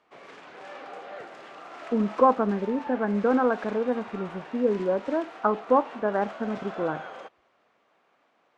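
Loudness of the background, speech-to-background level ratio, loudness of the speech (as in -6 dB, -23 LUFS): -41.5 LUFS, 15.0 dB, -26.5 LUFS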